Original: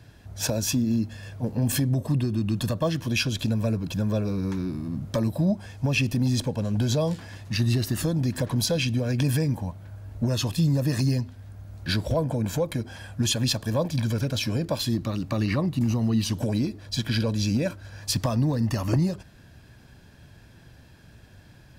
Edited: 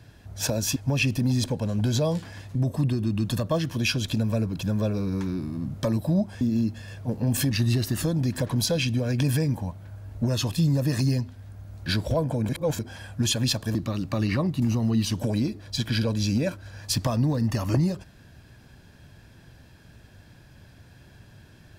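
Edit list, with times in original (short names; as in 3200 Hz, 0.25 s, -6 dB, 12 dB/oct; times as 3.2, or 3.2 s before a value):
0.76–1.86 swap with 5.72–7.51
12.49–12.79 reverse
13.75–14.94 cut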